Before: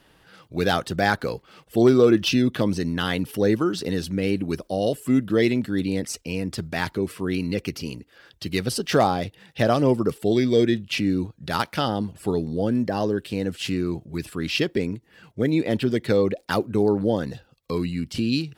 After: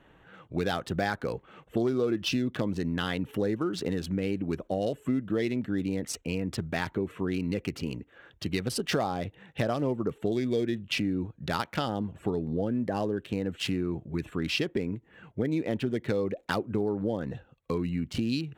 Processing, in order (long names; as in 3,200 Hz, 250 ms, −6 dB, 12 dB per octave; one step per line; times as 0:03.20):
adaptive Wiener filter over 9 samples
downward compressor 4 to 1, threshold −26 dBFS, peak gain reduction 12.5 dB